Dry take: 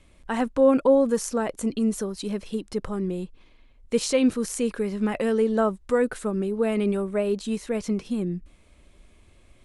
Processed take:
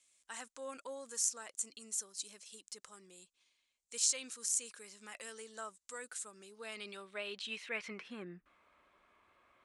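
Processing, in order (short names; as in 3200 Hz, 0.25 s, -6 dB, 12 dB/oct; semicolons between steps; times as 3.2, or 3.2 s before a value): dynamic EQ 1400 Hz, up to +4 dB, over -39 dBFS, Q 1.1; band-pass sweep 7300 Hz -> 1200 Hz, 6.28–8.59; gain +3 dB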